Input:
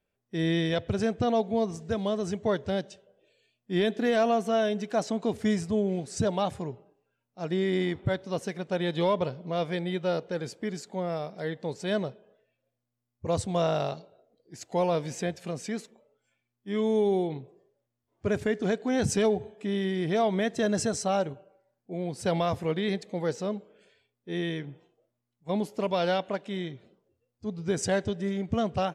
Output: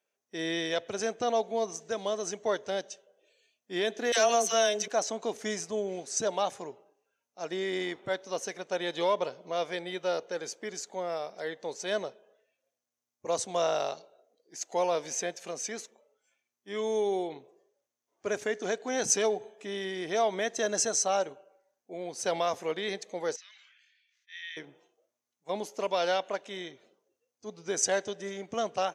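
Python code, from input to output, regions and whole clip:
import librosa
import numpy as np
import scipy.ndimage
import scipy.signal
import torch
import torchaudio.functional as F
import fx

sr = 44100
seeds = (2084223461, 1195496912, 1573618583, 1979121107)

y = fx.chain(x, sr, fx.high_shelf(hz=2700.0, db=12.0),
    fx.dispersion(late='lows', ms=58.0, hz=840.0), at=(4.12, 4.88))
y = fx.chain(y, sr, fx.cheby1_highpass(hz=1800.0, order=4),
    fx.air_absorb(metres=180.0),
    fx.sustainer(db_per_s=33.0), at=(23.36, 24.57))
y = scipy.signal.sosfilt(scipy.signal.butter(2, 440.0, 'highpass', fs=sr, output='sos'), y)
y = fx.peak_eq(y, sr, hz=6200.0, db=12.5, octaves=0.27)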